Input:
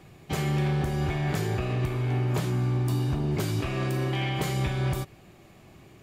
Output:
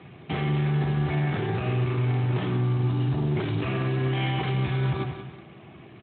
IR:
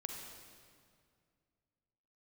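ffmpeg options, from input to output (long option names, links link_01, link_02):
-filter_complex "[0:a]bandreject=frequency=53.04:width_type=h:width=4,bandreject=frequency=106.08:width_type=h:width=4,bandreject=frequency=159.12:width_type=h:width=4,bandreject=frequency=212.16:width_type=h:width=4,bandreject=frequency=265.2:width_type=h:width=4,bandreject=frequency=318.24:width_type=h:width=4,bandreject=frequency=371.28:width_type=h:width=4,bandreject=frequency=424.32:width_type=h:width=4,bandreject=frequency=477.36:width_type=h:width=4,bandreject=frequency=530.4:width_type=h:width=4,bandreject=frequency=583.44:width_type=h:width=4,bandreject=frequency=636.48:width_type=h:width=4,bandreject=frequency=689.52:width_type=h:width=4,bandreject=frequency=742.56:width_type=h:width=4,bandreject=frequency=795.6:width_type=h:width=4,bandreject=frequency=848.64:width_type=h:width=4,bandreject=frequency=901.68:width_type=h:width=4,asplit=2[link_01][link_02];[link_02]acrusher=bits=5:mix=0:aa=0.000001,volume=-9dB[link_03];[link_01][link_03]amix=inputs=2:normalize=0,bandreject=frequency=560:width=12,aecho=1:1:185|370|555:0.211|0.074|0.0259,alimiter=level_in=0.5dB:limit=-24dB:level=0:latency=1:release=54,volume=-0.5dB,volume=6dB" -ar 8000 -c:a libspeex -b:a 15k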